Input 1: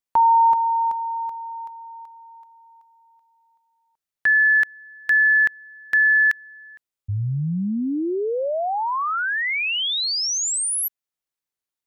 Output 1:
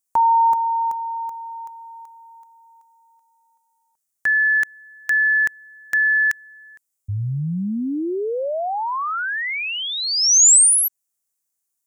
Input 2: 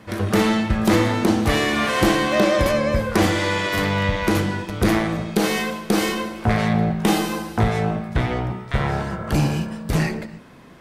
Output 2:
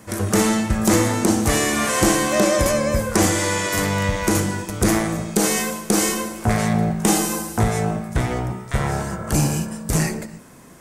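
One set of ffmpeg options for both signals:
-filter_complex "[0:a]highshelf=f=5.3k:t=q:w=1.5:g=12,acrossover=split=9100[a][b];[b]acompressor=threshold=-28dB:ratio=4:attack=1:release=60[c];[a][c]amix=inputs=2:normalize=0"

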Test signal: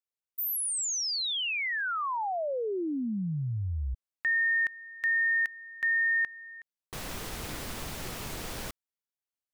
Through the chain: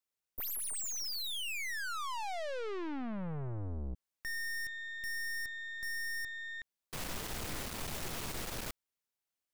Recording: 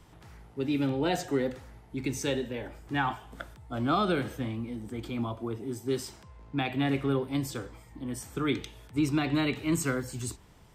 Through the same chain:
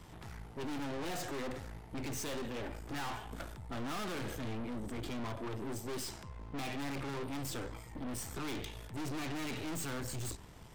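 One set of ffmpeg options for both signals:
-af "aeval=exprs='(tanh(178*val(0)+0.7)-tanh(0.7))/178':c=same,volume=6.5dB"

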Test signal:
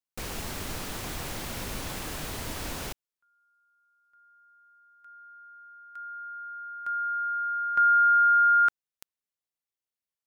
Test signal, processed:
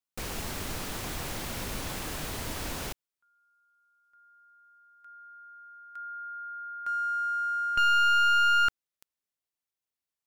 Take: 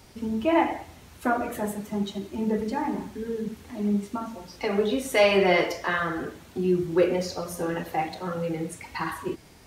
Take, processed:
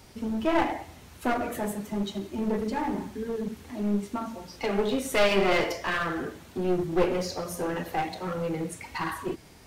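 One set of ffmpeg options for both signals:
-af "aeval=exprs='clip(val(0),-1,0.0422)':c=same"

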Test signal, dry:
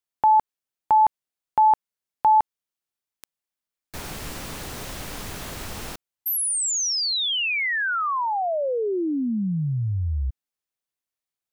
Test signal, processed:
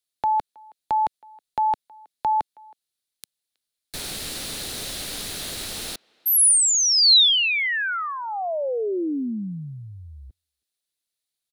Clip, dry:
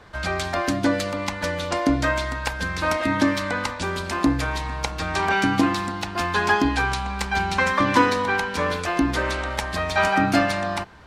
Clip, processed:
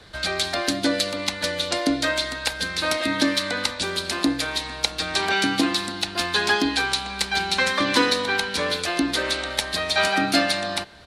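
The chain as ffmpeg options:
-filter_complex "[0:a]equalizer=f=1k:t=o:w=0.67:g=-7,equalizer=f=4k:t=o:w=0.67:g=11,equalizer=f=10k:t=o:w=0.67:g=9,acrossover=split=210|1600[a][b][c];[a]acompressor=threshold=-42dB:ratio=10:attack=84:release=482:detection=rms[d];[d][b][c]amix=inputs=3:normalize=0,asplit=2[e][f];[f]adelay=320,highpass=300,lowpass=3.4k,asoftclip=type=hard:threshold=-12dB,volume=-26dB[g];[e][g]amix=inputs=2:normalize=0"

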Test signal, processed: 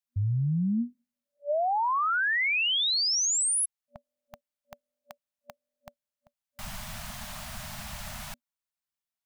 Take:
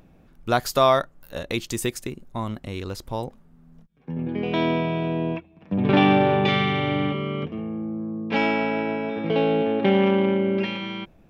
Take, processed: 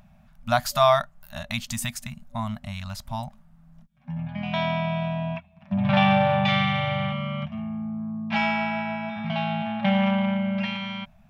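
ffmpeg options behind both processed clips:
-af "afftfilt=real='re*(1-between(b*sr/4096,240,580))':imag='im*(1-between(b*sr/4096,240,580))':win_size=4096:overlap=0.75"

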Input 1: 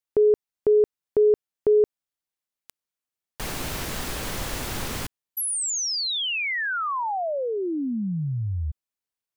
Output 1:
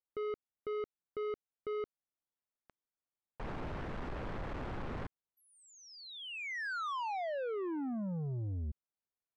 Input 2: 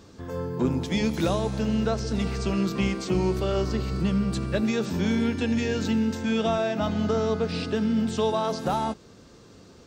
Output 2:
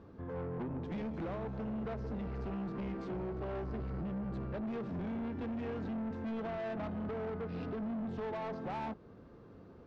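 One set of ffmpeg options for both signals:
-af "lowpass=1.4k,alimiter=limit=-20.5dB:level=0:latency=1:release=244,asoftclip=type=tanh:threshold=-31.5dB,volume=-4dB"

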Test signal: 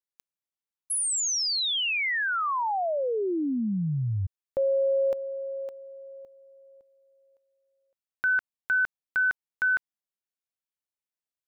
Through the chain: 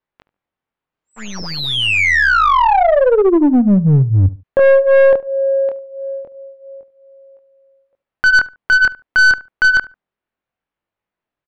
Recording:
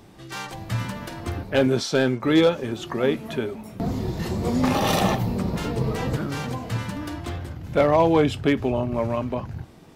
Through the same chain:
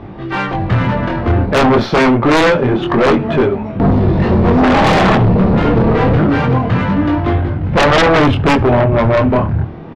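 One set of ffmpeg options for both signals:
-filter_complex "[0:a]flanger=delay=20:depth=7.2:speed=0.27,aresample=16000,aeval=exprs='clip(val(0),-1,0.0316)':c=same,aresample=44100,lowpass=3.7k,adynamicsmooth=sensitivity=1.5:basefreq=2.3k,aeval=exprs='0.316*sin(PI/2*4.47*val(0)/0.316)':c=same,asplit=2[a][b];[b]adelay=72,lowpass=f=1.8k:p=1,volume=-18dB,asplit=2[c][d];[d]adelay=72,lowpass=f=1.8k:p=1,volume=0.24[e];[c][e]amix=inputs=2:normalize=0[f];[a][f]amix=inputs=2:normalize=0,volume=4.5dB"

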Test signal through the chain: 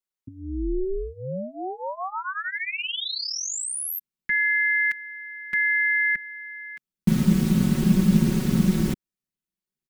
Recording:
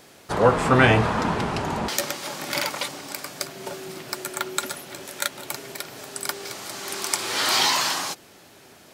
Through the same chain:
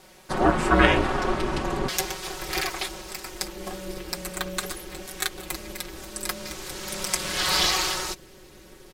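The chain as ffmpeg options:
-af "aecho=1:1:5.4:0.85,asubboost=boost=7.5:cutoff=180,aeval=exprs='val(0)*sin(2*PI*190*n/s)':c=same,volume=-1dB"

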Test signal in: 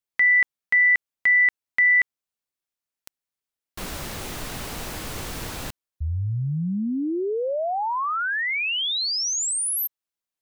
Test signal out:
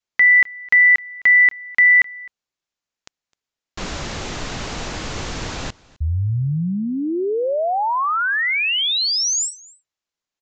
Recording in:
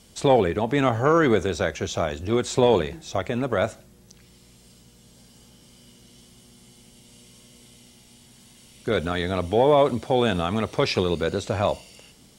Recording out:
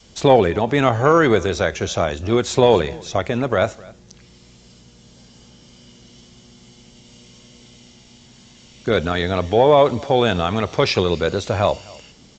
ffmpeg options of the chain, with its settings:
-filter_complex "[0:a]adynamicequalizer=threshold=0.0158:dfrequency=240:dqfactor=1.4:tfrequency=240:tqfactor=1.4:attack=5:release=100:ratio=0.375:range=2:mode=cutabove:tftype=bell,asplit=2[a][b];[b]aecho=0:1:259:0.0668[c];[a][c]amix=inputs=2:normalize=0,aresample=16000,aresample=44100,volume=5.5dB"

